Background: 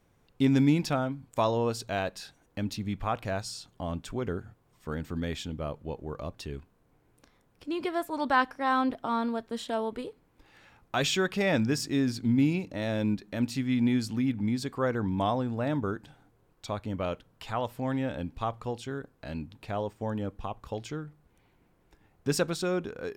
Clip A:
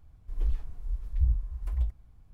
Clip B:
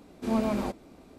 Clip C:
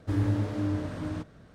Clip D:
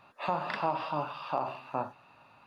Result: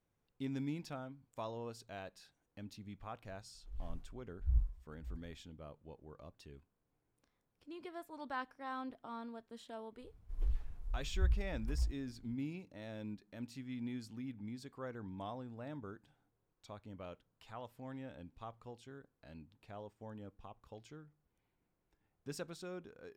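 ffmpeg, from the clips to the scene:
-filter_complex "[1:a]asplit=2[s0][s1];[0:a]volume=0.141[s2];[s0]aeval=exprs='val(0)*pow(10,-26*(0.5-0.5*cos(2*PI*1.5*n/s))/20)':c=same,atrim=end=2.33,asetpts=PTS-STARTPTS,volume=0.596,afade=t=in:d=0.004:c=hsin,afade=t=out:st=2.326:d=0.004:c=hsin,adelay=3260[s3];[s1]atrim=end=2.33,asetpts=PTS-STARTPTS,volume=0.447,afade=t=in:d=0.004:c=hsin,afade=t=out:st=2.326:d=0.004:c=hsin,adelay=10010[s4];[s2][s3][s4]amix=inputs=3:normalize=0"

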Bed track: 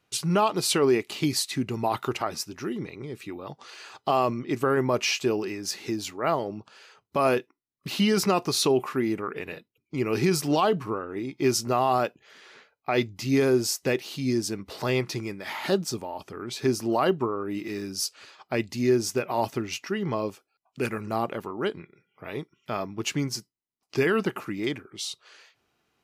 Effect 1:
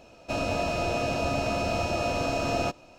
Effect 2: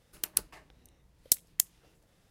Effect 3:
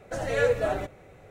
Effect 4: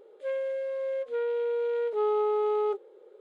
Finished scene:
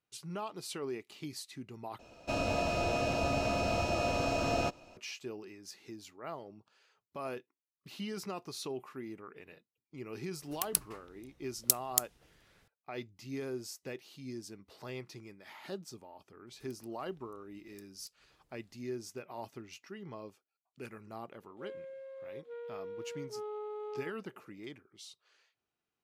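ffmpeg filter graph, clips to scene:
-filter_complex "[2:a]asplit=2[s0][s1];[0:a]volume=0.133[s2];[s1]acompressor=threshold=0.00316:ratio=6:attack=3.2:release=140:knee=1:detection=peak[s3];[s2]asplit=2[s4][s5];[s4]atrim=end=1.994[s6];[1:a]atrim=end=2.98,asetpts=PTS-STARTPTS,volume=0.631[s7];[s5]atrim=start=4.966[s8];[s0]atrim=end=2.3,asetpts=PTS-STARTPTS,volume=0.794,afade=t=in:d=0.004:c=hsin,afade=t=out:st=2.296:d=0.004:c=hsin,adelay=10380[s9];[s3]atrim=end=2.3,asetpts=PTS-STARTPTS,volume=0.335,afade=t=in:d=0.004:c=hsin,afade=t=out:st=2.296:d=0.004:c=hsin,adelay=16470[s10];[4:a]atrim=end=3.2,asetpts=PTS-STARTPTS,volume=0.178,afade=t=in:d=0.004:c=hsin,afade=t=out:st=3.196:d=0.004:c=hsin,adelay=21370[s11];[s6][s7]acrossfade=d=0.004:c1=hsin:c2=hsin[s12];[s12][s8]acrossfade=d=0.004:c1=hsin:c2=hsin[s13];[s13][s9][s10][s11]amix=inputs=4:normalize=0"

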